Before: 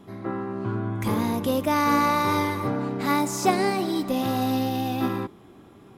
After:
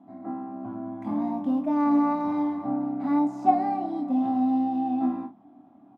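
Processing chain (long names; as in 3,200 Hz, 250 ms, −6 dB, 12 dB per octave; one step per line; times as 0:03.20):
pair of resonant band-passes 440 Hz, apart 1.4 octaves
ambience of single reflections 24 ms −6.5 dB, 48 ms −13 dB
level +4 dB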